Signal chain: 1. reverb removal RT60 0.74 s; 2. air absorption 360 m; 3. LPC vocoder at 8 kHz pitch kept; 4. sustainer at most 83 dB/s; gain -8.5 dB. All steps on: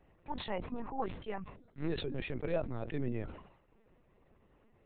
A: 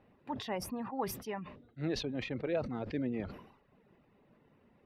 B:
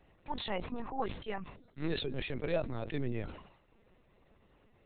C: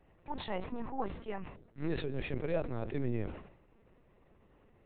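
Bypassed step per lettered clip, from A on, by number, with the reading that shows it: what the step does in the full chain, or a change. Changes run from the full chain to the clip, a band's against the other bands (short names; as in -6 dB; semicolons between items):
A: 3, 4 kHz band +2.5 dB; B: 2, 4 kHz band +4.0 dB; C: 1, 4 kHz band -3.0 dB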